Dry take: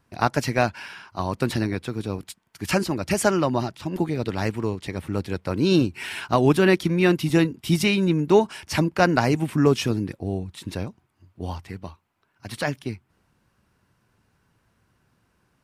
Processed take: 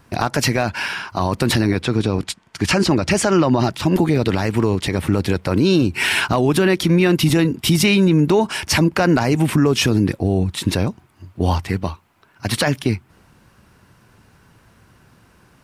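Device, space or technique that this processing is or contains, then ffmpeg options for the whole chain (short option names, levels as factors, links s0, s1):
loud club master: -filter_complex "[0:a]acompressor=threshold=0.0794:ratio=2,asoftclip=type=hard:threshold=0.282,alimiter=level_in=10.6:limit=0.891:release=50:level=0:latency=1,asplit=3[s0][s1][s2];[s0]afade=t=out:st=1.81:d=0.02[s3];[s1]lowpass=7400,afade=t=in:st=1.81:d=0.02,afade=t=out:st=3.62:d=0.02[s4];[s2]afade=t=in:st=3.62:d=0.02[s5];[s3][s4][s5]amix=inputs=3:normalize=0,volume=0.501"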